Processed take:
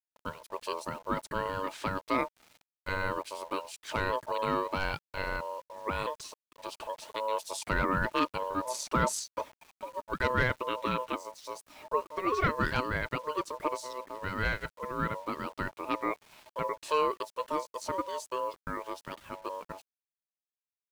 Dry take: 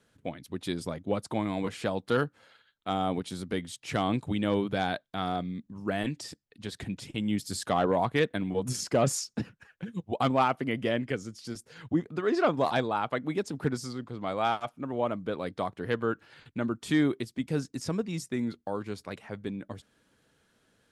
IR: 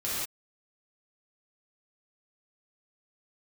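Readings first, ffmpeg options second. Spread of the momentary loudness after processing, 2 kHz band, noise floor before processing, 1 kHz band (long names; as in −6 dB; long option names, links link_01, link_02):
13 LU, +3.0 dB, −71 dBFS, +0.5 dB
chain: -af "acrusher=bits=8:mix=0:aa=0.000001,aeval=exprs='val(0)*sin(2*PI*760*n/s)':channel_layout=same"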